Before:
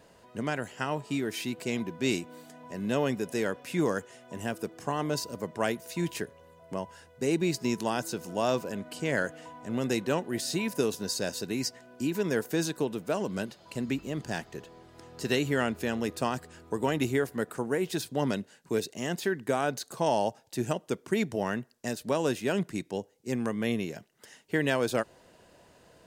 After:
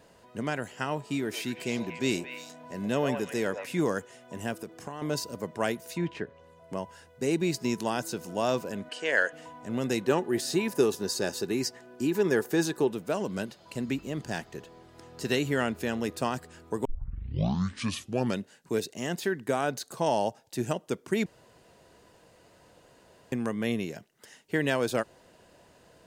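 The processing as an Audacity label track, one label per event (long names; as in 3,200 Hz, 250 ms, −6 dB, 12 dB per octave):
1.080000	3.660000	echo through a band-pass that steps 114 ms, band-pass from 770 Hz, each repeat 1.4 octaves, level −2.5 dB
4.560000	5.020000	downward compressor, threshold −33 dBFS
5.940000	6.730000	treble cut that deepens with the level closes to 2,600 Hz, closed at −30.5 dBFS
8.890000	9.330000	loudspeaker in its box 460–8,900 Hz, peaks and dips at 490 Hz +5 dB, 1,700 Hz +9 dB, 2,900 Hz +7 dB, 7,600 Hz −3 dB
10.080000	12.910000	hollow resonant body resonances 380/840/1,200/1,700 Hz, height 9 dB
16.850000	16.850000	tape start 1.55 s
21.260000	23.320000	fill with room tone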